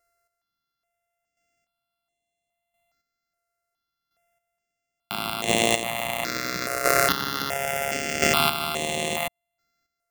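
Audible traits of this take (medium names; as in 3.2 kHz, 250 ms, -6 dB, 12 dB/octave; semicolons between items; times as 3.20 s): a buzz of ramps at a fixed pitch in blocks of 64 samples; chopped level 0.73 Hz, depth 60%, duty 20%; notches that jump at a steady rate 2.4 Hz 880–5000 Hz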